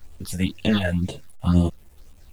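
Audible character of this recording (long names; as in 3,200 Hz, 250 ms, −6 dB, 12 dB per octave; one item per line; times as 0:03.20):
tremolo triangle 9.7 Hz, depth 40%
phaser sweep stages 6, 2 Hz, lowest notch 290–1,500 Hz
a quantiser's noise floor 10 bits, dither none
a shimmering, thickened sound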